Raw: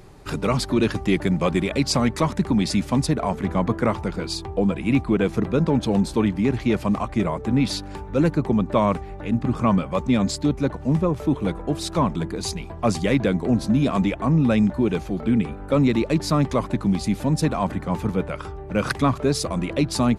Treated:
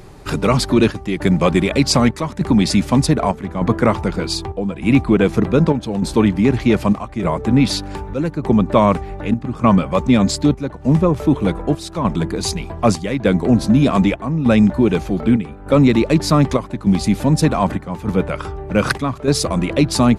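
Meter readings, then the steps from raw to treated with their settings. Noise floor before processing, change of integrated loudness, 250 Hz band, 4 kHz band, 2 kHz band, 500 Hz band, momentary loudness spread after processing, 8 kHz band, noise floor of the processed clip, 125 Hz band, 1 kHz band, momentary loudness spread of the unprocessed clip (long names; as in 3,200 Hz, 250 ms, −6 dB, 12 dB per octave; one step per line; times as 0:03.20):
−36 dBFS, +5.5 dB, +5.5 dB, +6.0 dB, +5.5 dB, +5.5 dB, 8 LU, +6.0 dB, −36 dBFS, +5.5 dB, +5.5 dB, 6 LU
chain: square-wave tremolo 0.83 Hz, depth 60%, duty 75%
level +6.5 dB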